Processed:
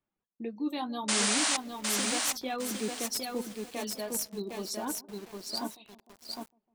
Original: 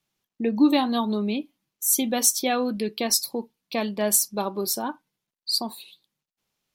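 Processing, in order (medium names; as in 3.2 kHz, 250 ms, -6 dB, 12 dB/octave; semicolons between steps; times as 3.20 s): level-controlled noise filter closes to 1.5 kHz, open at -18.5 dBFS; time-frequency box 4.23–4.50 s, 470–3800 Hz -30 dB; reverb removal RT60 0.67 s; dynamic bell 320 Hz, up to +4 dB, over -40 dBFS, Q 3.9; reverse; compression 5:1, threshold -28 dBFS, peak gain reduction 16 dB; reverse; integer overflow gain 18.5 dB; feedback echo behind a band-pass 152 ms, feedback 69%, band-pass 410 Hz, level -18.5 dB; flange 0.63 Hz, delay 3 ms, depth 4.9 ms, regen -54%; painted sound noise, 1.08–1.57 s, 540–9800 Hz -28 dBFS; bit-crushed delay 758 ms, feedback 35%, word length 8-bit, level -3 dB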